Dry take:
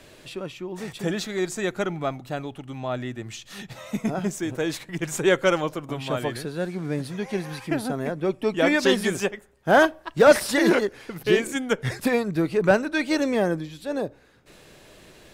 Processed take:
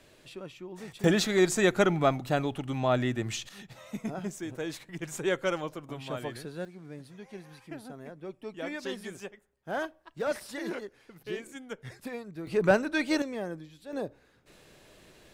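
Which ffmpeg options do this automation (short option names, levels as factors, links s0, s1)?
-af "asetnsamples=n=441:p=0,asendcmd='1.04 volume volume 3dB;3.49 volume volume -9dB;6.65 volume volume -16.5dB;12.47 volume volume -4dB;13.22 volume volume -13dB;13.93 volume volume -6.5dB',volume=0.355"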